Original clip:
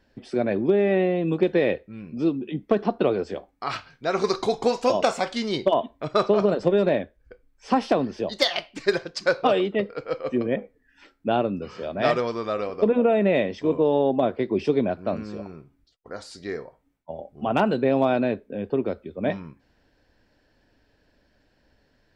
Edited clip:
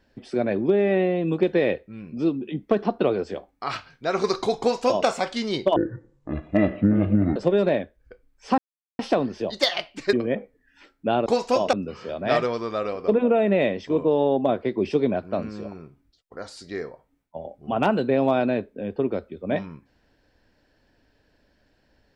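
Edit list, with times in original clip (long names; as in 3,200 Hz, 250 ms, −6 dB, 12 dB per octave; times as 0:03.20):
0:04.60–0:05.07: duplicate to 0:11.47
0:05.76–0:06.56: play speed 50%
0:07.78: splice in silence 0.41 s
0:08.92–0:10.34: remove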